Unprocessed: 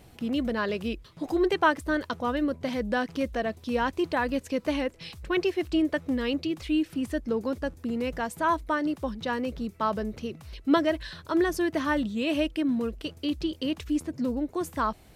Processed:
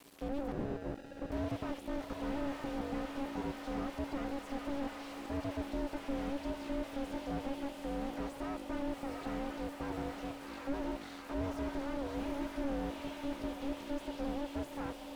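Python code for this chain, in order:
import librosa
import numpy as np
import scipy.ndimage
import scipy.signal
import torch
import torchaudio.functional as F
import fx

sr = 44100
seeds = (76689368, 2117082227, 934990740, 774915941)

p1 = np.maximum(x, 0.0)
p2 = p1 * np.sin(2.0 * np.pi * 280.0 * np.arange(len(p1)) / sr)
p3 = fx.low_shelf(p2, sr, hz=330.0, db=-11.0)
p4 = p3 + fx.echo_diffused(p3, sr, ms=801, feedback_pct=61, wet_db=-14, dry=0)
p5 = fx.sample_hold(p4, sr, seeds[0], rate_hz=1100.0, jitter_pct=0, at=(0.52, 1.32))
p6 = fx.high_shelf(p5, sr, hz=4600.0, db=10.5)
p7 = fx.slew_limit(p6, sr, full_power_hz=6.9)
y = p7 * 10.0 ** (3.0 / 20.0)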